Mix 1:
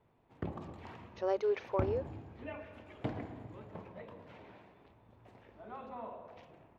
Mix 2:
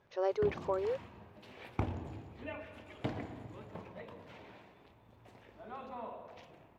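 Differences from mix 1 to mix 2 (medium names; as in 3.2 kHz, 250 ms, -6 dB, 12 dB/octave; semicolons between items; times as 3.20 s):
speech: entry -1.05 s; background: add treble shelf 3.2 kHz +9.5 dB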